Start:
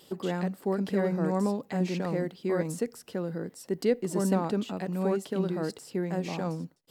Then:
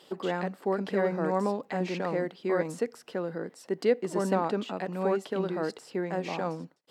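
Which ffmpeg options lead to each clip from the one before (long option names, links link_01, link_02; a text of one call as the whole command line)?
ffmpeg -i in.wav -af "highpass=frequency=640:poles=1,aemphasis=mode=reproduction:type=75kf,volume=6.5dB" out.wav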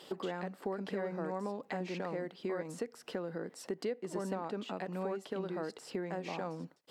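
ffmpeg -i in.wav -af "acompressor=threshold=-39dB:ratio=4,volume=2.5dB" out.wav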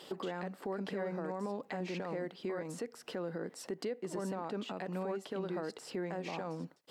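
ffmpeg -i in.wav -af "alimiter=level_in=7dB:limit=-24dB:level=0:latency=1:release=28,volume=-7dB,volume=1.5dB" out.wav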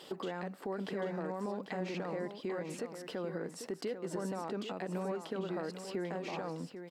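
ffmpeg -i in.wav -af "aecho=1:1:794:0.355" out.wav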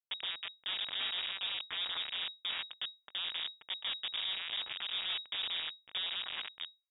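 ffmpeg -i in.wav -af "acrusher=bits=3:dc=4:mix=0:aa=0.000001,lowpass=frequency=3200:width_type=q:width=0.5098,lowpass=frequency=3200:width_type=q:width=0.6013,lowpass=frequency=3200:width_type=q:width=0.9,lowpass=frequency=3200:width_type=q:width=2.563,afreqshift=-3800,volume=1.5dB" out.wav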